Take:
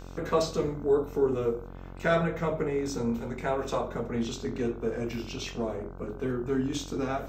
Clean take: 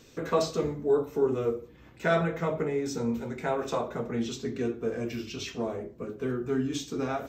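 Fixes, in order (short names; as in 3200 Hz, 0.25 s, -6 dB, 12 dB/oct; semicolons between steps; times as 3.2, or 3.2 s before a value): de-hum 45.2 Hz, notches 34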